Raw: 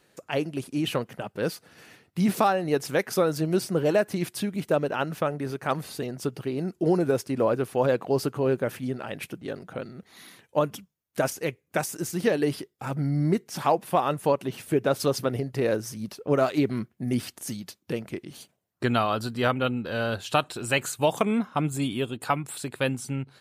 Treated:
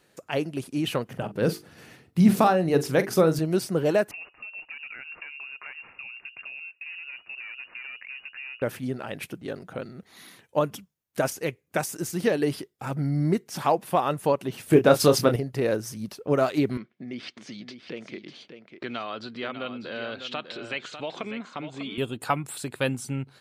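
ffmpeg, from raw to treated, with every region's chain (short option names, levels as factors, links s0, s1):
-filter_complex "[0:a]asettb=1/sr,asplit=3[s0][s1][s2];[s0]atrim=end=1.064[s3];[s1]atrim=start=1.06:end=3.39,asetpts=PTS-STARTPTS,afade=t=in:d=0.004:c=qsin,afade=t=out:st=2.326:d=0.004:c=qsin,lowshelf=f=360:g=8.5,bandreject=f=50:t=h:w=6,bandreject=f=100:t=h:w=6,bandreject=f=150:t=h:w=6,bandreject=f=200:t=h:w=6,bandreject=f=250:t=h:w=6,bandreject=f=300:t=h:w=6,bandreject=f=350:t=h:w=6,bandreject=f=400:t=h:w=6,bandreject=f=450:t=h:w=6,asplit=2[s4][s5];[s5]adelay=43,volume=0.224[s6];[s4][s6]amix=inputs=2:normalize=0,atrim=end_sample=102753[s7];[s2]atrim=start=3.386[s8];[s3][s7]acrossfade=d=0.004:c1=hsin:c2=qsin[s9];[s9][s8]acrossfade=d=0.004:c1=qsin:c2=hsin,asettb=1/sr,asplit=3[s10][s11][s12];[s10]atrim=end=4.114[s13];[s11]atrim=start=4.11:end=8.62,asetpts=PTS-STARTPTS,afade=t=in:d=0.004:c=qsin,afade=t=out:st=4.506:d=0.004:c=qsin,aeval=exprs='clip(val(0),-1,0.0668)':c=same,acompressor=threshold=0.0158:ratio=10:attack=3.2:release=140:knee=1:detection=peak,lowpass=f=2500:t=q:w=0.5098,lowpass=f=2500:t=q:w=0.6013,lowpass=f=2500:t=q:w=0.9,lowpass=f=2500:t=q:w=2.563,afreqshift=-2900[s14];[s12]atrim=start=8.616[s15];[s13][s14]acrossfade=d=0.004:c1=hsin:c2=qsin[s16];[s16][s15]acrossfade=d=0.004:c1=qsin:c2=hsin,asettb=1/sr,asplit=3[s17][s18][s19];[s17]atrim=end=14.704[s20];[s18]atrim=start=14.7:end=15.36,asetpts=PTS-STARTPTS,afade=t=in:d=0.004:c=qsin,afade=t=out:st=0.656:d=0.004:c=qsin,acontrast=56,asplit=2[s21][s22];[s22]adelay=26,volume=0.398[s23];[s21][s23]amix=inputs=2:normalize=0,atrim=end_sample=29106[s24];[s19]atrim=start=15.356[s25];[s20][s24]acrossfade=d=0.004:c1=hsin:c2=qsin[s26];[s26][s25]acrossfade=d=0.004:c1=qsin:c2=hsin,asettb=1/sr,asplit=3[s27][s28][s29];[s27]atrim=end=16.774[s30];[s28]atrim=start=16.77:end=21.98,asetpts=PTS-STARTPTS,afade=t=in:d=0.004:c=qsin,afade=t=out:st=5.206:d=0.004:c=qsin,acompressor=threshold=0.0251:ratio=2.5:attack=3.2:release=140:knee=1:detection=peak,highpass=230,equalizer=f=860:t=q:w=4:g=-4,equalizer=f=2200:t=q:w=4:g=6,equalizer=f=3400:t=q:w=4:g=4,lowpass=f=4900:w=0.5412,lowpass=f=4900:w=1.3066,aecho=1:1:598:0.335,atrim=end_sample=229761[s31];[s29]atrim=start=21.976[s32];[s30][s31]acrossfade=d=0.004:c1=hsin:c2=qsin[s33];[s33][s32]acrossfade=d=0.004:c1=qsin:c2=hsin"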